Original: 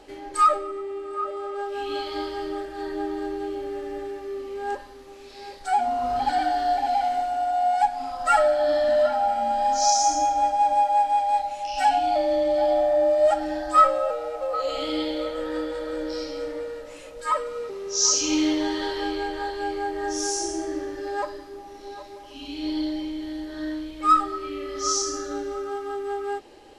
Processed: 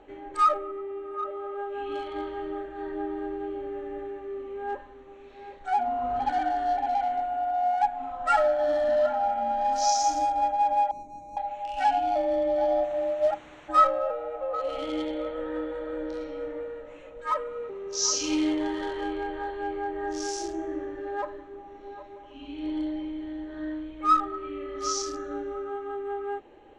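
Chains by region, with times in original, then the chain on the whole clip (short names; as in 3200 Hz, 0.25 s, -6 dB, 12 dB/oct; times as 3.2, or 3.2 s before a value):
10.91–11.37 median filter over 41 samples + EQ curve 320 Hz 0 dB, 3000 Hz -29 dB, 6400 Hz +7 dB
12.83–13.68 expander -16 dBFS + added noise white -38 dBFS + air absorption 56 m
whole clip: Wiener smoothing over 9 samples; LPF 6500 Hz 12 dB/oct; gain -3 dB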